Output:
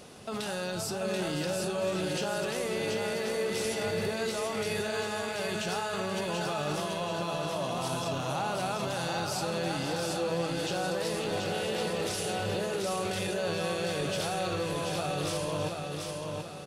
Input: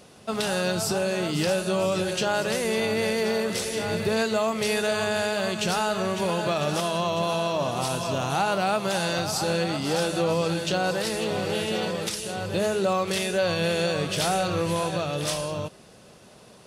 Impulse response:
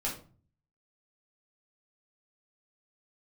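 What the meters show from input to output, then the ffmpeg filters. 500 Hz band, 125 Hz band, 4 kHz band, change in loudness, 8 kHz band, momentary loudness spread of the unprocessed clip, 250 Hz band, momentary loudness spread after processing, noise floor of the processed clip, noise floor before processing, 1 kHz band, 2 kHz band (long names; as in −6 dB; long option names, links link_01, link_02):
−6.0 dB, −5.5 dB, −6.0 dB, −6.0 dB, −5.5 dB, 3 LU, −6.5 dB, 2 LU, −36 dBFS, −50 dBFS, −6.0 dB, −6.0 dB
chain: -filter_complex "[0:a]alimiter=level_in=3dB:limit=-24dB:level=0:latency=1:release=15,volume=-3dB,aecho=1:1:733|1466|2199|2932|3665|4398:0.631|0.284|0.128|0.0575|0.0259|0.0116,asplit=2[link_01][link_02];[1:a]atrim=start_sample=2205[link_03];[link_02][link_03]afir=irnorm=-1:irlink=0,volume=-15dB[link_04];[link_01][link_04]amix=inputs=2:normalize=0"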